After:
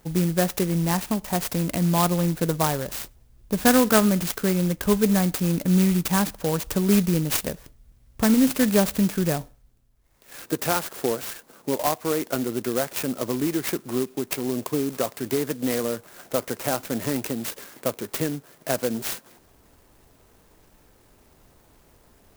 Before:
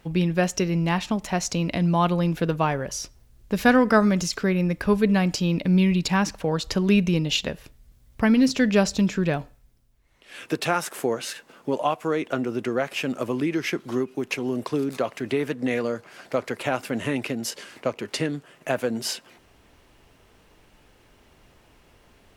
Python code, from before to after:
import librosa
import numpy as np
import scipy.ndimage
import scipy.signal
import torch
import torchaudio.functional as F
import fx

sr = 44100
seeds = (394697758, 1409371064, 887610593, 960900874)

y = fx.clock_jitter(x, sr, seeds[0], jitter_ms=0.096)